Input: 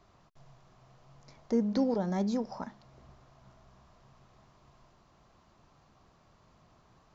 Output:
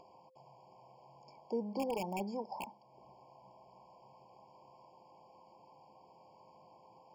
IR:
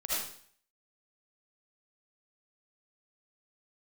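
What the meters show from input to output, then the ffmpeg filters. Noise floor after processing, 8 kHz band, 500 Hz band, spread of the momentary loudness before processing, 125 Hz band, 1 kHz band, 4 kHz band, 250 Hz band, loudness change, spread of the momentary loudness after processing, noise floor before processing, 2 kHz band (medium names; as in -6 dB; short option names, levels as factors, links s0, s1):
-63 dBFS, no reading, -5.5 dB, 14 LU, -11.0 dB, -0.5 dB, -3.5 dB, -11.5 dB, -8.0 dB, 16 LU, -65 dBFS, -1.0 dB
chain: -filter_complex "[0:a]highpass=230,equalizer=f=250:t=q:w=4:g=-6,equalizer=f=860:t=q:w=4:g=10,equalizer=f=2800:t=q:w=4:g=-9,lowpass=f=6100:w=0.5412,lowpass=f=6100:w=1.3066,acrossover=split=580|1500[s0][s1][s2];[s1]aeval=exprs='(mod(29.9*val(0)+1,2)-1)/29.9':c=same[s3];[s0][s3][s2]amix=inputs=3:normalize=0,aeval=exprs='val(0)+0.000316*sin(2*PI*520*n/s)':c=same,acompressor=mode=upward:threshold=0.00501:ratio=2.5,afftfilt=real='re*eq(mod(floor(b*sr/1024/1100),2),0)':imag='im*eq(mod(floor(b*sr/1024/1100),2),0)':win_size=1024:overlap=0.75,volume=0.562"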